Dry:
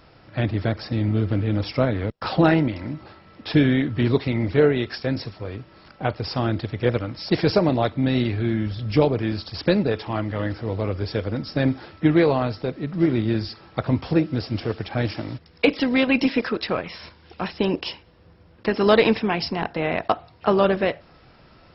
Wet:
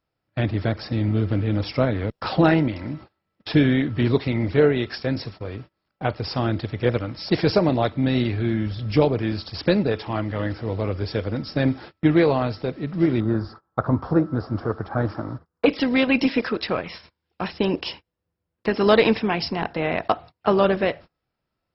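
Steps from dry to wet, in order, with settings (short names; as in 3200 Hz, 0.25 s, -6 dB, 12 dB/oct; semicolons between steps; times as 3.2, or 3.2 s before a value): gate -38 dBFS, range -29 dB; 13.2–15.66 resonant high shelf 1800 Hz -11.5 dB, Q 3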